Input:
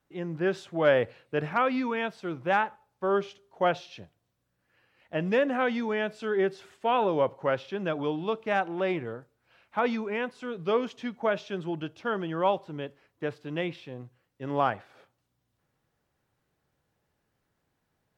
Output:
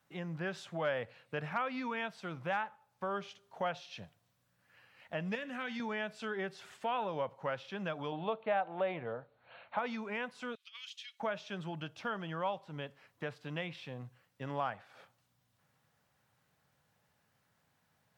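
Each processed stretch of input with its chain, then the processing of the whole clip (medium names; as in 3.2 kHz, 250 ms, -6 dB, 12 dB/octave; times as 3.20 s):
5.35–5.80 s: peaking EQ 700 Hz -13.5 dB 2.2 oct + de-hum 110.5 Hz, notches 32
8.12–9.79 s: brick-wall FIR low-pass 4.5 kHz + peaking EQ 610 Hz +10 dB 1.3 oct
10.55–11.20 s: ladder high-pass 2.5 kHz, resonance 35% + compressor with a negative ratio -52 dBFS, ratio -0.5
whole clip: high-pass 110 Hz; peaking EQ 350 Hz -11.5 dB 0.89 oct; compression 2:1, threshold -47 dBFS; trim +4.5 dB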